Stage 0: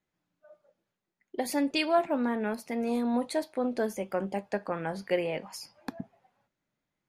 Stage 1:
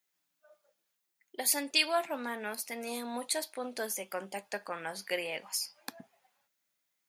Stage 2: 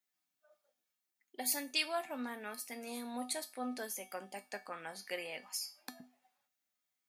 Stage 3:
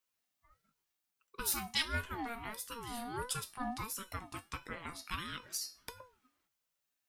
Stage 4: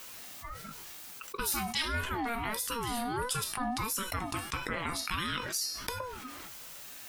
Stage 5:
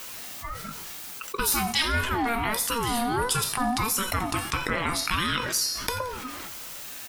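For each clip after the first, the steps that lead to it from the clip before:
tilt EQ +4.5 dB/octave; trim -3.5 dB
feedback comb 250 Hz, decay 0.32 s, harmonics odd, mix 80%; trim +6 dB
single-diode clipper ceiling -20.5 dBFS; ring modulator with a swept carrier 620 Hz, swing 25%, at 1.5 Hz; trim +4 dB
level flattener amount 70%
feedback delay 87 ms, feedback 59%, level -17 dB; trim +7.5 dB

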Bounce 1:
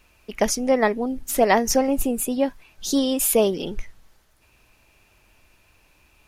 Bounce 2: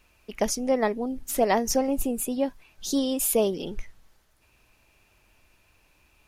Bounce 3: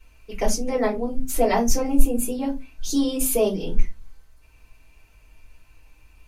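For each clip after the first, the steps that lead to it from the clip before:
dynamic bell 1.8 kHz, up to -4 dB, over -38 dBFS, Q 1; trim -4 dB
reverberation, pre-delay 3 ms, DRR -6.5 dB; trim -6.5 dB

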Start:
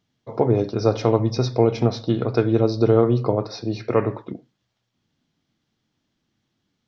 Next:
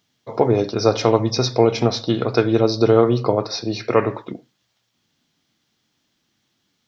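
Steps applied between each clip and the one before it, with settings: tilt EQ +2 dB/octave; trim +5 dB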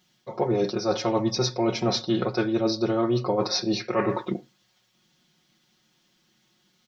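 comb 5.5 ms, depth 100%; reverse; compression 6:1, threshold -21 dBFS, peak gain reduction 13 dB; reverse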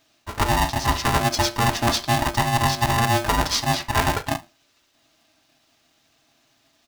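polarity switched at an audio rate 470 Hz; trim +3.5 dB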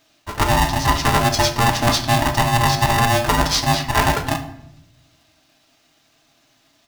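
simulated room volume 220 m³, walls mixed, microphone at 0.44 m; trim +3 dB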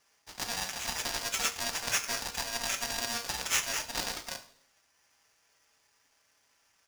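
Butterworth band-pass 3.6 kHz, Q 1.3; polarity switched at an audio rate 2 kHz; trim -6 dB

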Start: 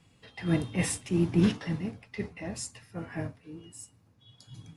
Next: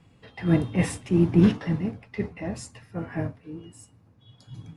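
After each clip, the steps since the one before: treble shelf 2.8 kHz -11.5 dB; trim +6 dB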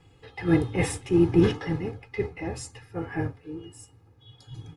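comb 2.4 ms, depth 72%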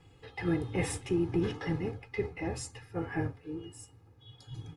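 compression 4:1, threshold -25 dBFS, peak gain reduction 10 dB; trim -2 dB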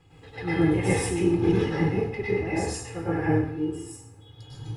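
plate-style reverb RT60 0.66 s, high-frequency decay 0.8×, pre-delay 90 ms, DRR -8 dB

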